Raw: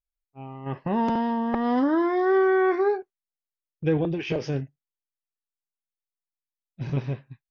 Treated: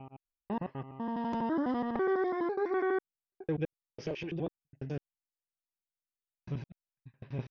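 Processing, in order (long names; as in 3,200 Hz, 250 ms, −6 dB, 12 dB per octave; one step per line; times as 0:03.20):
slices reordered back to front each 83 ms, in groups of 6
level −9 dB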